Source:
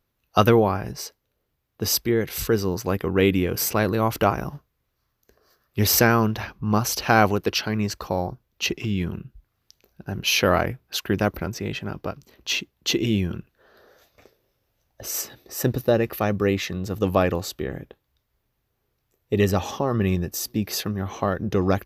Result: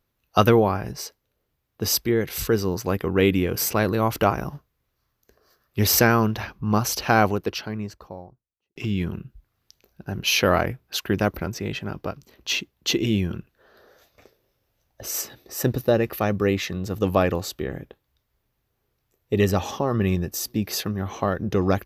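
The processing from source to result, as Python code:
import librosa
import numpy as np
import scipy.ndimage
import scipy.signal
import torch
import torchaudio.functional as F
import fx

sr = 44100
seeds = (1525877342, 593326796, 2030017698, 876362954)

y = fx.studio_fade_out(x, sr, start_s=6.84, length_s=1.92)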